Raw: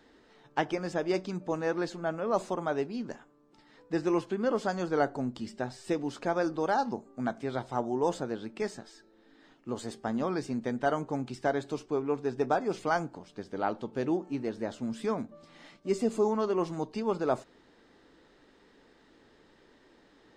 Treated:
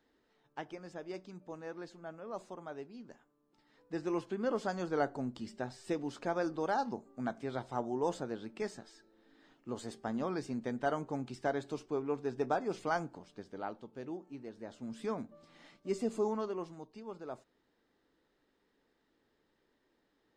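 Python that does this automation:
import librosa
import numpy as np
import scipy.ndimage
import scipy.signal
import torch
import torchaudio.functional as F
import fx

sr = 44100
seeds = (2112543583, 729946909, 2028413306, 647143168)

y = fx.gain(x, sr, db=fx.line((3.08, -14.0), (4.44, -5.0), (13.24, -5.0), (13.9, -13.0), (14.56, -13.0), (15.06, -6.0), (16.34, -6.0), (16.84, -15.5)))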